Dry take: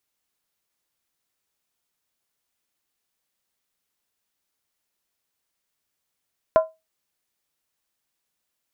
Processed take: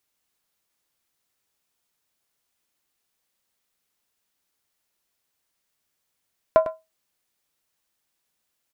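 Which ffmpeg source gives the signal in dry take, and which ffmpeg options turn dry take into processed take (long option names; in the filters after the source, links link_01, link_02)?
-f lavfi -i "aevalsrc='0.376*pow(10,-3*t/0.22)*sin(2*PI*641*t)+0.141*pow(10,-3*t/0.174)*sin(2*PI*1021.8*t)+0.0531*pow(10,-3*t/0.151)*sin(2*PI*1369.2*t)+0.02*pow(10,-3*t/0.145)*sin(2*PI*1471.7*t)+0.0075*pow(10,-3*t/0.135)*sin(2*PI*1700.6*t)':duration=0.63:sample_rate=44100"
-filter_complex "[0:a]asplit=2[link_01][link_02];[link_02]asoftclip=type=tanh:threshold=-17.5dB,volume=-11dB[link_03];[link_01][link_03]amix=inputs=2:normalize=0,aecho=1:1:102:0.237"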